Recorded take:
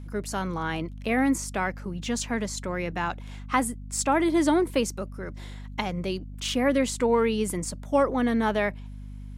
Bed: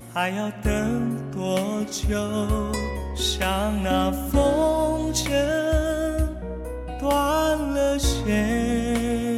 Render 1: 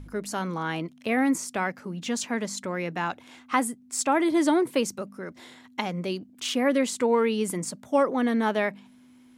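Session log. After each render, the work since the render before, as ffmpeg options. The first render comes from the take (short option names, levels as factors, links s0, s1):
-af "bandreject=f=50:t=h:w=4,bandreject=f=100:t=h:w=4,bandreject=f=150:t=h:w=4,bandreject=f=200:t=h:w=4"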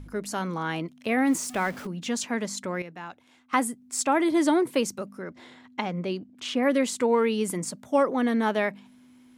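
-filter_complex "[0:a]asettb=1/sr,asplit=3[s0][s1][s2];[s0]atrim=end=1.274[s3];[s1]atrim=start=1.27:end=1.87,asetpts=PTS-STARTPTS,afade=t=in:d=0.004:c=qsin,afade=t=out:st=0.596:d=0.004:c=qsin,aeval=exprs='val(0)+0.5*0.0133*sgn(val(0))':c=same[s4];[s2]atrim=start=1.866[s5];[s3][s4]acrossfade=d=0.004:c1=hsin:c2=qsin[s6];[s6][s5]acrossfade=d=0.004:c1=qsin:c2=hsin,asettb=1/sr,asplit=3[s7][s8][s9];[s7]atrim=end=5.224[s10];[s8]atrim=start=5.22:end=6.63,asetpts=PTS-STARTPTS,afade=t=in:d=0.004:c=qsin,afade=t=out:st=1.406:d=0.004:c=qsin,aemphasis=mode=reproduction:type=50fm[s11];[s9]atrim=start=6.626[s12];[s10][s11]acrossfade=d=0.004:c1=hsin:c2=qsin[s13];[s13][s12]acrossfade=d=0.004:c1=qsin:c2=hsin,asplit=3[s14][s15][s16];[s14]atrim=end=2.822[s17];[s15]atrim=start=2.818:end=3.532,asetpts=PTS-STARTPTS,volume=0.299[s18];[s16]atrim=start=3.528[s19];[s17][s18]acrossfade=d=0.004:c1=hsin:c2=hsin[s20];[s20][s19]acrossfade=d=0.004:c1=hsin:c2=hsin"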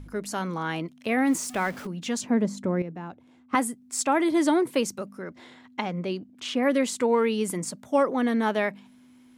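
-filter_complex "[0:a]asettb=1/sr,asplit=3[s0][s1][s2];[s0]atrim=end=2.214[s3];[s1]atrim=start=2.21:end=3.55,asetpts=PTS-STARTPTS,afade=t=in:d=0.004:c=qsin,afade=t=out:st=1.336:d=0.004:c=qsin,tiltshelf=f=800:g=9.5[s4];[s2]atrim=start=3.546[s5];[s3][s4]acrossfade=d=0.004:c1=hsin:c2=qsin[s6];[s6][s5]acrossfade=d=0.004:c1=qsin:c2=hsin"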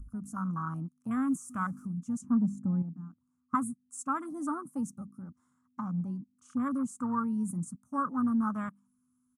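-af "afwtdn=0.0355,firequalizer=gain_entry='entry(180,0);entry(260,-4);entry(390,-28);entry(810,-17);entry(1200,4);entry(1900,-23);entry(3800,-26);entry(6200,-1);entry(9700,8);entry(15000,-13)':delay=0.05:min_phase=1"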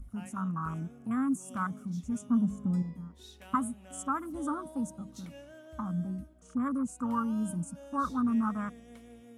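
-filter_complex "[1:a]volume=0.0398[s0];[0:a][s0]amix=inputs=2:normalize=0"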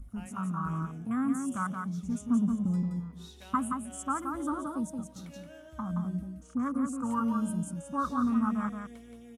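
-af "aecho=1:1:174:0.562"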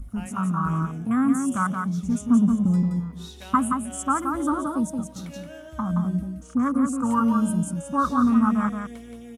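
-af "volume=2.66"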